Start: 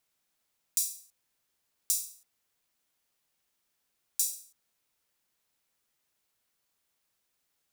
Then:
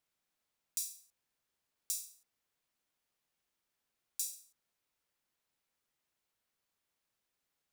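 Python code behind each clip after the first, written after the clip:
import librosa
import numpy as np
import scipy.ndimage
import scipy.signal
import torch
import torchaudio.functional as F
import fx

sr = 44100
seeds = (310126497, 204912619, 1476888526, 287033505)

y = fx.high_shelf(x, sr, hz=4500.0, db=-5.5)
y = y * librosa.db_to_amplitude(-4.0)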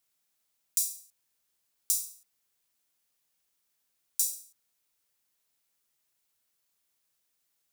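y = fx.high_shelf(x, sr, hz=4300.0, db=11.5)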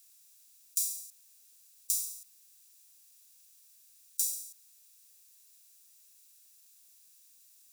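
y = fx.bin_compress(x, sr, power=0.6)
y = y * librosa.db_to_amplitude(-3.5)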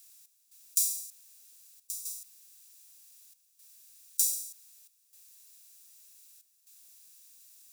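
y = fx.step_gate(x, sr, bpm=117, pattern='xx..xxxxxxxx', floor_db=-12.0, edge_ms=4.5)
y = y * librosa.db_to_amplitude(4.0)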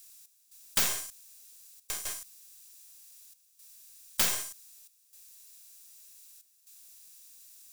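y = fx.tracing_dist(x, sr, depth_ms=0.43)
y = y * librosa.db_to_amplitude(3.0)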